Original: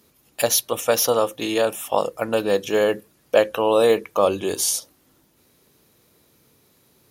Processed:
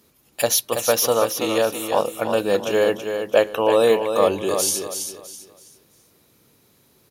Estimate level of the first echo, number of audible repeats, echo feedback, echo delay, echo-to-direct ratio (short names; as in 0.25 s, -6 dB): -7.0 dB, 3, 31%, 0.328 s, -6.5 dB